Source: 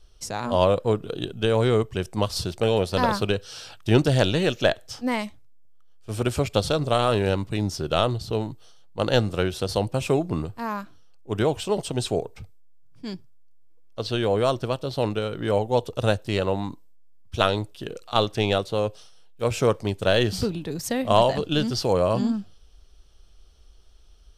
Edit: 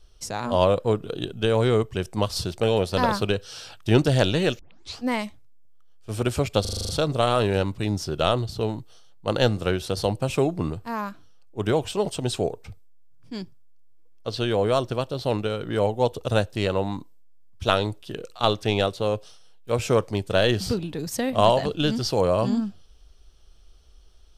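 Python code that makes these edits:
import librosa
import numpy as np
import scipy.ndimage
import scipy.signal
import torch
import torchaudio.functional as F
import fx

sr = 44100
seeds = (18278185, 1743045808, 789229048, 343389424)

y = fx.edit(x, sr, fx.tape_start(start_s=4.59, length_s=0.41),
    fx.stutter(start_s=6.61, slice_s=0.04, count=8), tone=tone)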